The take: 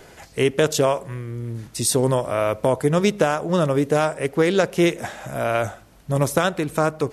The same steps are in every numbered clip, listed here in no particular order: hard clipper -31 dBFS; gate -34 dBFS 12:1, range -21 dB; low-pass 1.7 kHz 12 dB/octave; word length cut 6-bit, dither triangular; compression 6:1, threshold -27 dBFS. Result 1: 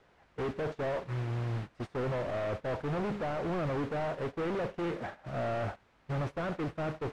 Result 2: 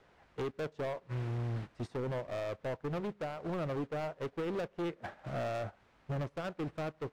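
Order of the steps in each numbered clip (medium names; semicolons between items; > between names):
hard clipper > compression > word length cut > low-pass > gate; word length cut > low-pass > compression > hard clipper > gate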